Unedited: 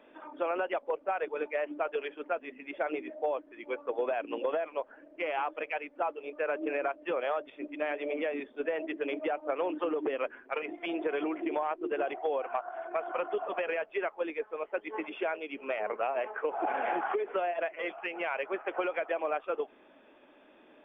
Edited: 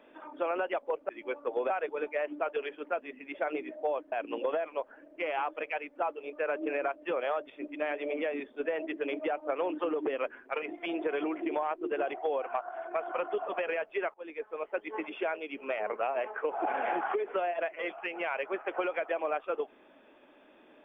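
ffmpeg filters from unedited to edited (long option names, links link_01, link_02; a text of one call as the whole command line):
ffmpeg -i in.wav -filter_complex "[0:a]asplit=5[link_01][link_02][link_03][link_04][link_05];[link_01]atrim=end=1.092[link_06];[link_02]atrim=start=3.508:end=4.122[link_07];[link_03]atrim=start=1.088:end=3.512[link_08];[link_04]atrim=start=4.118:end=14.14,asetpts=PTS-STARTPTS,afade=type=out:start_time=10.018:duration=0.004:curve=hsin:silence=0.0749894[link_09];[link_05]atrim=start=14.14,asetpts=PTS-STARTPTS,afade=type=in:duration=0.56:curve=qsin:silence=0.0749894[link_10];[link_06][link_07]acrossfade=duration=0.004:curve1=hsin:curve2=hsin[link_11];[link_11][link_08]acrossfade=duration=0.004:curve1=hsin:curve2=hsin[link_12];[link_09][link_10]concat=n=2:v=0:a=1[link_13];[link_12][link_13]acrossfade=duration=0.004:curve1=hsin:curve2=hsin" out.wav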